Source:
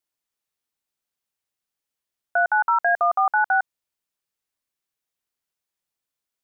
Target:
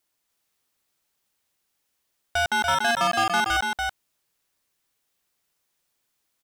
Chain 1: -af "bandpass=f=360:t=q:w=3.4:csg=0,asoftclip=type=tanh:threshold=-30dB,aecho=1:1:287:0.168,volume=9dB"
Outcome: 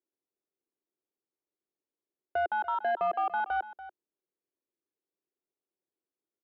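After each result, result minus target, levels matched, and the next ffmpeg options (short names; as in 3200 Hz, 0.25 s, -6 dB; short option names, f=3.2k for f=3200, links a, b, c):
echo-to-direct -11.5 dB; 500 Hz band +4.0 dB
-af "bandpass=f=360:t=q:w=3.4:csg=0,asoftclip=type=tanh:threshold=-30dB,aecho=1:1:287:0.631,volume=9dB"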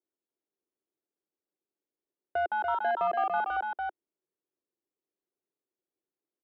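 500 Hz band +5.0 dB
-af "asoftclip=type=tanh:threshold=-30dB,aecho=1:1:287:0.631,volume=9dB"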